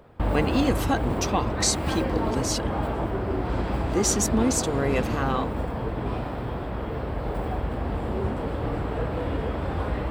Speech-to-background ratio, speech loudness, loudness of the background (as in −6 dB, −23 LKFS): 2.0 dB, −26.5 LKFS, −28.5 LKFS